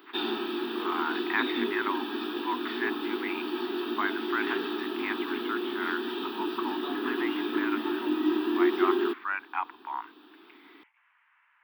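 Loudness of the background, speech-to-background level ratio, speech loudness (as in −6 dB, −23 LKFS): −31.0 LKFS, −4.5 dB, −35.5 LKFS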